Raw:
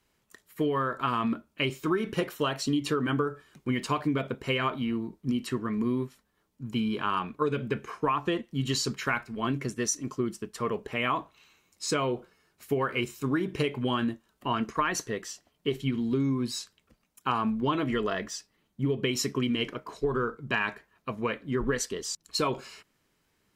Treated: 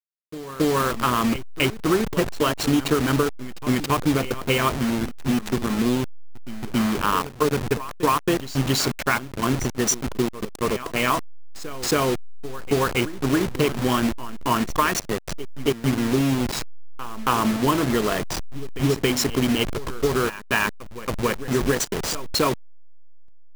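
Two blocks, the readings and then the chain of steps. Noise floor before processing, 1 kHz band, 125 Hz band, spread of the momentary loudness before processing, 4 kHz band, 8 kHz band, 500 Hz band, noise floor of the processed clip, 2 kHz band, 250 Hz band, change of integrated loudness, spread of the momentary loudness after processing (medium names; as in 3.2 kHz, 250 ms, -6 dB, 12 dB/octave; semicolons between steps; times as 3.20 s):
-73 dBFS, +6.5 dB, +7.0 dB, 7 LU, +7.0 dB, +8.0 dB, +7.0 dB, -38 dBFS, +6.5 dB, +6.5 dB, +7.0 dB, 9 LU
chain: send-on-delta sampling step -28.5 dBFS; reverse echo 275 ms -14.5 dB; trim +7.5 dB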